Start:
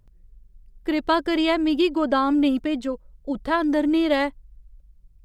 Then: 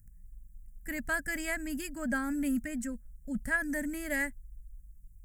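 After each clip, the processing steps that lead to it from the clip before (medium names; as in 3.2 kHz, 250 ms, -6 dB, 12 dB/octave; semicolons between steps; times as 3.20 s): FFT filter 230 Hz 0 dB, 380 Hz -29 dB, 610 Hz -15 dB, 1.1 kHz -24 dB, 1.7 kHz +2 dB, 3.7 kHz -27 dB, 5.2 kHz -6 dB, 7.5 kHz +10 dB, 11 kHz +12 dB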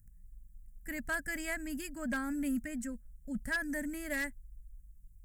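wavefolder -23.5 dBFS; trim -3 dB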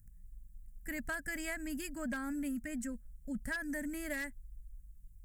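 compression, threshold -36 dBFS, peak gain reduction 6.5 dB; trim +1 dB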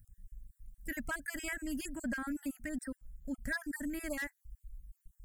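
random holes in the spectrogram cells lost 33%; trim +2 dB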